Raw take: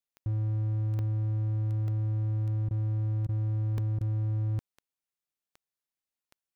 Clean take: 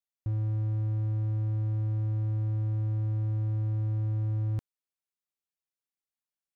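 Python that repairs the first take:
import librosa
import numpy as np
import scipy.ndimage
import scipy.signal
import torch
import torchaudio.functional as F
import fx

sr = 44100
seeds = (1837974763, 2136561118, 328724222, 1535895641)

y = fx.fix_declick_ar(x, sr, threshold=10.0)
y = fx.fix_interpolate(y, sr, at_s=(0.99, 1.88, 3.78), length_ms=1.5)
y = fx.fix_interpolate(y, sr, at_s=(2.69, 3.27, 3.99), length_ms=17.0)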